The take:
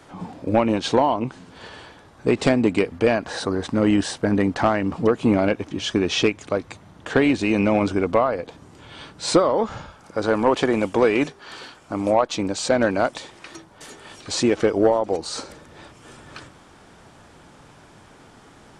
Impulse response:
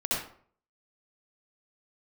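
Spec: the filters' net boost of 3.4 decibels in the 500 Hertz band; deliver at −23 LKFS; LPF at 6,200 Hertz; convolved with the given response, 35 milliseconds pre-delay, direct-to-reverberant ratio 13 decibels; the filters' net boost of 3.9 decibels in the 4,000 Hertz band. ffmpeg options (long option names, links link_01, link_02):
-filter_complex "[0:a]lowpass=6200,equalizer=frequency=500:width_type=o:gain=4,equalizer=frequency=4000:width_type=o:gain=5.5,asplit=2[link_01][link_02];[1:a]atrim=start_sample=2205,adelay=35[link_03];[link_02][link_03]afir=irnorm=-1:irlink=0,volume=-21.5dB[link_04];[link_01][link_04]amix=inputs=2:normalize=0,volume=-4dB"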